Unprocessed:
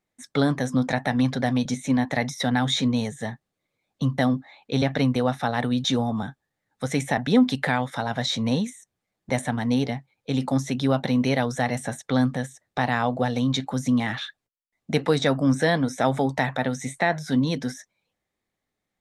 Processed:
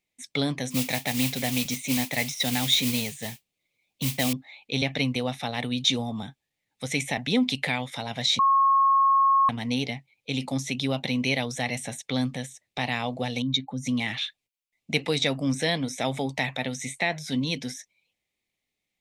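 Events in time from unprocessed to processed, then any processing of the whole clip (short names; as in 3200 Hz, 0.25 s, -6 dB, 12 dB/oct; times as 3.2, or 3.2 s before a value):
0.7–4.33 modulation noise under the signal 12 dB
8.39–9.49 bleep 1090 Hz -8 dBFS
13.42–13.87 spectral contrast raised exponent 1.5
whole clip: resonant high shelf 1900 Hz +7 dB, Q 3; gain -5.5 dB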